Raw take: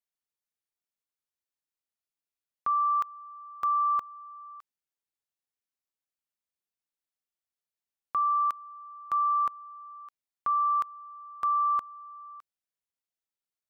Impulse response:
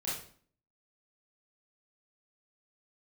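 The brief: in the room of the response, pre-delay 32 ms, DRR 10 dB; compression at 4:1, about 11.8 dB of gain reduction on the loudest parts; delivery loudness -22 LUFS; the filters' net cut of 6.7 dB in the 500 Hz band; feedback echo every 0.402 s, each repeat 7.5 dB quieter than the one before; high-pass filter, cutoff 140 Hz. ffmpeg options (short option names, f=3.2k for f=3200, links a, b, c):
-filter_complex "[0:a]highpass=140,equalizer=f=500:t=o:g=-9,acompressor=threshold=-40dB:ratio=4,aecho=1:1:402|804|1206|1608|2010:0.422|0.177|0.0744|0.0312|0.0131,asplit=2[a][b];[1:a]atrim=start_sample=2205,adelay=32[c];[b][c]afir=irnorm=-1:irlink=0,volume=-13dB[d];[a][d]amix=inputs=2:normalize=0,volume=19.5dB"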